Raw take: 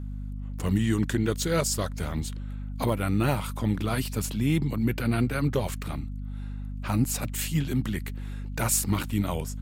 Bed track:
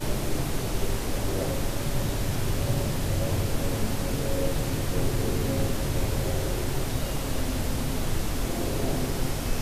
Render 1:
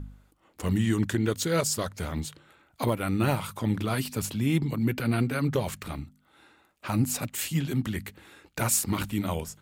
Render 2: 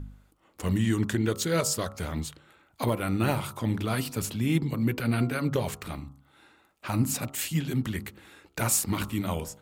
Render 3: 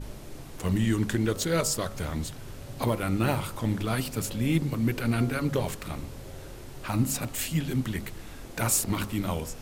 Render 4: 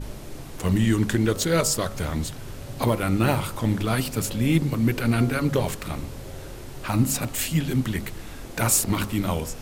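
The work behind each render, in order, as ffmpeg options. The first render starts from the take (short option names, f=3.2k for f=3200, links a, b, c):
-af "bandreject=f=50:t=h:w=4,bandreject=f=100:t=h:w=4,bandreject=f=150:t=h:w=4,bandreject=f=200:t=h:w=4,bandreject=f=250:t=h:w=4"
-af "bandreject=f=69.39:t=h:w=4,bandreject=f=138.78:t=h:w=4,bandreject=f=208.17:t=h:w=4,bandreject=f=277.56:t=h:w=4,bandreject=f=346.95:t=h:w=4,bandreject=f=416.34:t=h:w=4,bandreject=f=485.73:t=h:w=4,bandreject=f=555.12:t=h:w=4,bandreject=f=624.51:t=h:w=4,bandreject=f=693.9:t=h:w=4,bandreject=f=763.29:t=h:w=4,bandreject=f=832.68:t=h:w=4,bandreject=f=902.07:t=h:w=4,bandreject=f=971.46:t=h:w=4,bandreject=f=1.04085k:t=h:w=4,bandreject=f=1.11024k:t=h:w=4,bandreject=f=1.17963k:t=h:w=4,bandreject=f=1.24902k:t=h:w=4,bandreject=f=1.31841k:t=h:w=4,bandreject=f=1.3878k:t=h:w=4"
-filter_complex "[1:a]volume=-15dB[a];[0:a][a]amix=inputs=2:normalize=0"
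-af "volume=4.5dB"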